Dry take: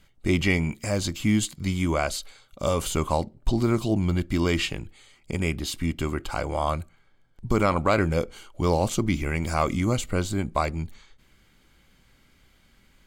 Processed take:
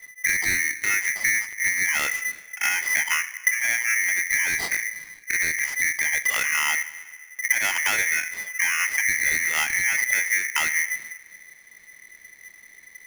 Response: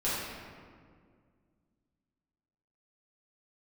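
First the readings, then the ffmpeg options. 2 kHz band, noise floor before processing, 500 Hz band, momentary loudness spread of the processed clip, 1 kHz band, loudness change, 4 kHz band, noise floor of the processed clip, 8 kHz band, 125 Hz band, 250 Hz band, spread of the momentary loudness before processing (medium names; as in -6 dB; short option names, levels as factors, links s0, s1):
+14.0 dB, -61 dBFS, -18.5 dB, 7 LU, -5.5 dB, +4.5 dB, +2.0 dB, -50 dBFS, +12.0 dB, under -20 dB, -22.5 dB, 8 LU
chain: -filter_complex "[0:a]aeval=exprs='if(lt(val(0),0),0.708*val(0),val(0))':c=same,lowpass=3000,lowshelf=f=240:g=10,bandreject=f=60:t=h:w=6,bandreject=f=120:t=h:w=6,bandreject=f=180:t=h:w=6,bandreject=f=240:t=h:w=6,acompressor=threshold=0.0631:ratio=6,asplit=2[s0][s1];[1:a]atrim=start_sample=2205,asetrate=66150,aresample=44100[s2];[s1][s2]afir=irnorm=-1:irlink=0,volume=0.1[s3];[s0][s3]amix=inputs=2:normalize=0,aeval=exprs='val(0)*sgn(sin(2*PI*2000*n/s))':c=same,volume=1.41"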